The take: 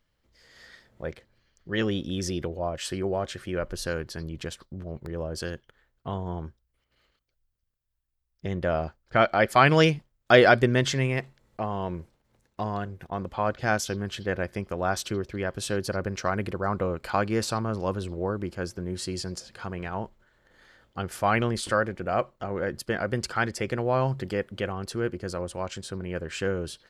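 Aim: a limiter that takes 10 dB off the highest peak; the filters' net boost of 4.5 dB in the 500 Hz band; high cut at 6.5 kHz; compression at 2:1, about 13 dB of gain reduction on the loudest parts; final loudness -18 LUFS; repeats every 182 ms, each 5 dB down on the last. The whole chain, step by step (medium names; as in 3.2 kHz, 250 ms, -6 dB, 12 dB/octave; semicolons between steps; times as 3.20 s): low-pass 6.5 kHz; peaking EQ 500 Hz +5.5 dB; compression 2:1, threshold -33 dBFS; peak limiter -24 dBFS; feedback delay 182 ms, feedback 56%, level -5 dB; trim +16.5 dB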